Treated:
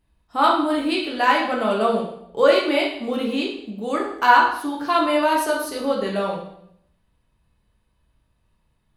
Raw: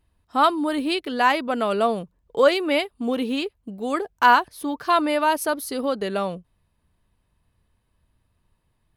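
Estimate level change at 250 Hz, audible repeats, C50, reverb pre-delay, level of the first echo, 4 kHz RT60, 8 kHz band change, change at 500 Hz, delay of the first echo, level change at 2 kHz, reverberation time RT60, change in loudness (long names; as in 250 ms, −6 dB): +1.5 dB, no echo audible, 4.5 dB, 8 ms, no echo audible, 0.65 s, −0.5 dB, +2.0 dB, no echo audible, +2.0 dB, 0.70 s, +2.0 dB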